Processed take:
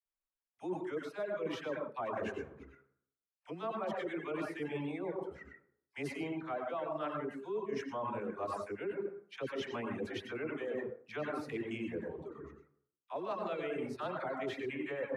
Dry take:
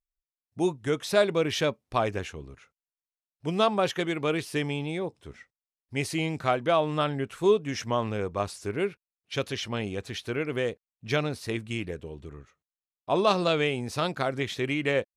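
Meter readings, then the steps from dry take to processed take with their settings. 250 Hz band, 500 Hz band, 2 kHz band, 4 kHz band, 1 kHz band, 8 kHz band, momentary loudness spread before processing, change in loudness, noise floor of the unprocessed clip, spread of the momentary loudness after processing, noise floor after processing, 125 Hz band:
-9.5 dB, -10.5 dB, -11.5 dB, -17.5 dB, -10.5 dB, under -15 dB, 11 LU, -11.5 dB, under -85 dBFS, 7 LU, under -85 dBFS, -16.5 dB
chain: three-band isolator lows -13 dB, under 200 Hz, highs -15 dB, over 2.3 kHz; plate-style reverb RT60 0.69 s, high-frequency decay 0.45×, pre-delay 80 ms, DRR 0.5 dB; reverb removal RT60 0.95 s; phase dispersion lows, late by 57 ms, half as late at 620 Hz; reverse; compression 10:1, threshold -35 dBFS, peak gain reduction 18 dB; reverse

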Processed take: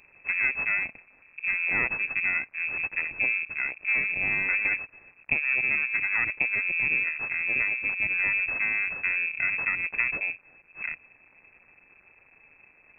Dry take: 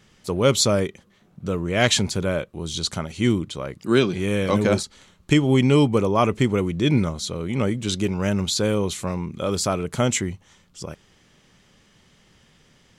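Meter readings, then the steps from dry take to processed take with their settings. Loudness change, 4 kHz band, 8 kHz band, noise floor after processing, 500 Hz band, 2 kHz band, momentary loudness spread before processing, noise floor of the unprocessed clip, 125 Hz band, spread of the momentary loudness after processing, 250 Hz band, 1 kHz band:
-3.5 dB, under -25 dB, under -40 dB, -60 dBFS, -25.0 dB, +8.5 dB, 12 LU, -58 dBFS, -26.5 dB, 7 LU, -26.5 dB, -13.5 dB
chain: static phaser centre 350 Hz, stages 6; compression, threshold -27 dBFS, peak gain reduction 12 dB; half-wave rectifier; crackle 270 per s -49 dBFS; frequency inversion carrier 2.6 kHz; trim +5.5 dB

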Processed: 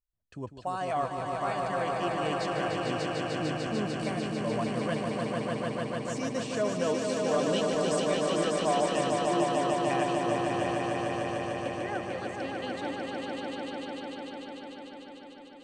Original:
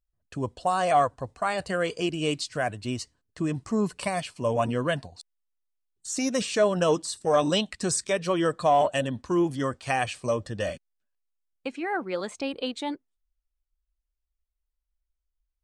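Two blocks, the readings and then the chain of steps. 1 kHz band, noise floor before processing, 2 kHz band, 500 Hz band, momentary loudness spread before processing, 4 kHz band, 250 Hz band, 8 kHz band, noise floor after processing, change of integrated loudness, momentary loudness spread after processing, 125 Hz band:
-2.5 dB, -82 dBFS, -2.5 dB, -2.0 dB, 12 LU, -3.0 dB, -1.5 dB, -6.0 dB, -48 dBFS, -3.0 dB, 12 LU, -2.5 dB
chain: treble shelf 8.1 kHz -9.5 dB; on a send: echo with a slow build-up 149 ms, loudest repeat 5, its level -4 dB; on the sum: trim -8.5 dB

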